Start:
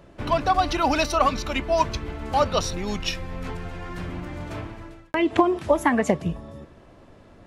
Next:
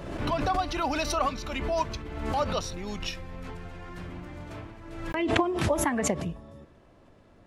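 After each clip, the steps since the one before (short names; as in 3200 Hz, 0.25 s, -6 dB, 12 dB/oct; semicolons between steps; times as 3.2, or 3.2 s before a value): backwards sustainer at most 47 dB/s; gain -7.5 dB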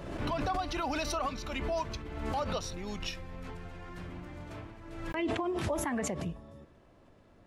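limiter -20.5 dBFS, peak gain reduction 10.5 dB; gain -3.5 dB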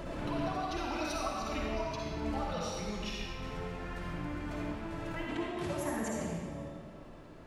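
compressor 4:1, threshold -44 dBFS, peak gain reduction 13 dB; flange 1.3 Hz, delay 2.9 ms, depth 4.9 ms, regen +37%; reverb RT60 1.8 s, pre-delay 46 ms, DRR -4 dB; gain +7.5 dB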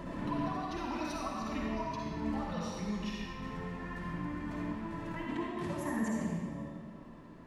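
small resonant body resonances 210/1000/1800 Hz, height 11 dB, ringing for 25 ms; gain -5.5 dB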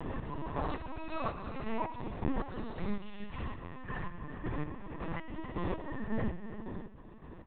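chopper 1.8 Hz, depth 60%, duty 35%; echo 0.327 s -11 dB; LPC vocoder at 8 kHz pitch kept; gain +3.5 dB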